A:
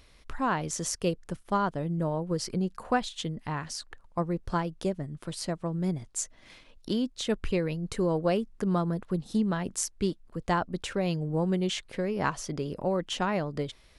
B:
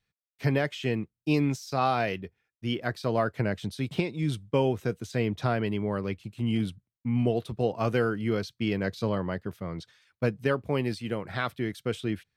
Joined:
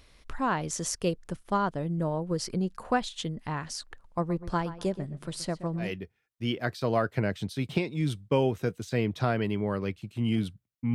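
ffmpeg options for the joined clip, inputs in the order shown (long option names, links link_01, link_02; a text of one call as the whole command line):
ffmpeg -i cue0.wav -i cue1.wav -filter_complex "[0:a]asplit=3[link_01][link_02][link_03];[link_01]afade=type=out:start_time=4.2:duration=0.02[link_04];[link_02]asplit=2[link_05][link_06];[link_06]adelay=125,lowpass=frequency=2600:poles=1,volume=-13.5dB,asplit=2[link_07][link_08];[link_08]adelay=125,lowpass=frequency=2600:poles=1,volume=0.3,asplit=2[link_09][link_10];[link_10]adelay=125,lowpass=frequency=2600:poles=1,volume=0.3[link_11];[link_05][link_07][link_09][link_11]amix=inputs=4:normalize=0,afade=type=in:start_time=4.2:duration=0.02,afade=type=out:start_time=5.93:duration=0.02[link_12];[link_03]afade=type=in:start_time=5.93:duration=0.02[link_13];[link_04][link_12][link_13]amix=inputs=3:normalize=0,apad=whole_dur=10.94,atrim=end=10.94,atrim=end=5.93,asetpts=PTS-STARTPTS[link_14];[1:a]atrim=start=1.99:end=7.16,asetpts=PTS-STARTPTS[link_15];[link_14][link_15]acrossfade=duration=0.16:curve1=tri:curve2=tri" out.wav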